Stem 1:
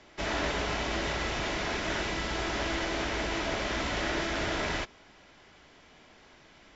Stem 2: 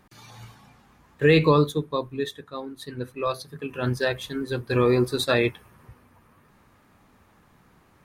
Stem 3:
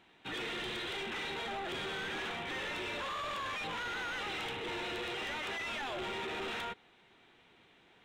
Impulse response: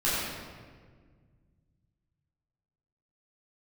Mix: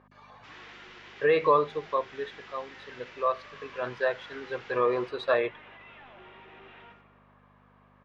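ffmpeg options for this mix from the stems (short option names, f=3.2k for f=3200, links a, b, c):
-filter_complex "[0:a]highpass=f=1.2k:w=0.5412,highpass=f=1.2k:w=1.3066,adelay=250,volume=-15.5dB[a];[1:a]aeval=exprs='val(0)+0.0141*(sin(2*PI*50*n/s)+sin(2*PI*2*50*n/s)/2+sin(2*PI*3*50*n/s)/3+sin(2*PI*4*50*n/s)/4+sin(2*PI*5*50*n/s)/5)':c=same,bandpass=f=880:t=q:w=1:csg=0,aecho=1:1:1.8:0.4,volume=0.5dB,asplit=2[b][c];[2:a]lowpass=f=3.1k:w=0.5412,lowpass=f=3.1k:w=1.3066,adelay=200,volume=-13dB,asplit=2[d][e];[e]volume=-18dB[f];[c]apad=whole_len=309366[g];[a][g]sidechaincompress=threshold=-26dB:ratio=8:attack=16:release=130[h];[3:a]atrim=start_sample=2205[i];[f][i]afir=irnorm=-1:irlink=0[j];[h][b][d][j]amix=inputs=4:normalize=0,lowpass=4.4k,lowshelf=f=230:g=-6.5,bandreject=f=52.31:t=h:w=4,bandreject=f=104.62:t=h:w=4,bandreject=f=156.93:t=h:w=4,bandreject=f=209.24:t=h:w=4"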